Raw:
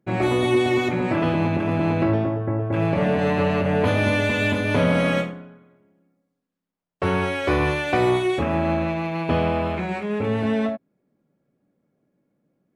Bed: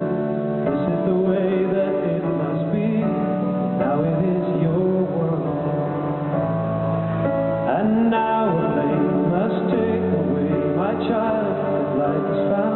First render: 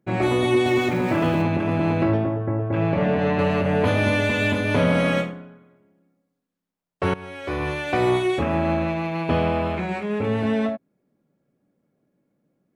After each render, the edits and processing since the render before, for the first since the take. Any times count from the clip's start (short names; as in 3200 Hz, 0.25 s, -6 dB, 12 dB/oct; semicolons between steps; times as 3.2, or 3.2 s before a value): 0.66–1.42 zero-crossing step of -36 dBFS; 2.17–3.39 air absorption 110 m; 7.14–8.15 fade in, from -18.5 dB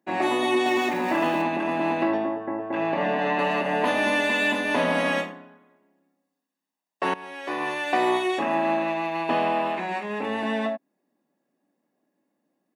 HPF 270 Hz 24 dB/oct; comb 1.1 ms, depth 54%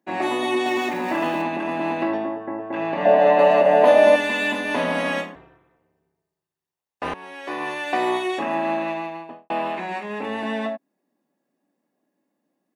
3.05–4.16 bell 600 Hz +15 dB 0.73 oct; 5.35–7.14 ring modulator 110 Hz; 8.88–9.5 studio fade out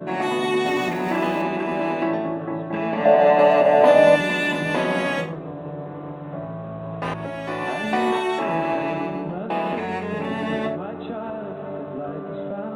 add bed -10 dB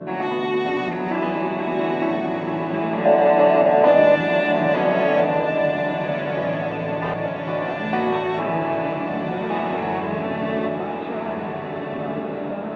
air absorption 190 m; diffused feedback echo 1.465 s, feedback 52%, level -4.5 dB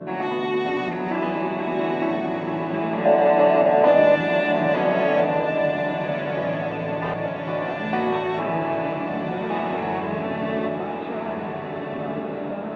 gain -1.5 dB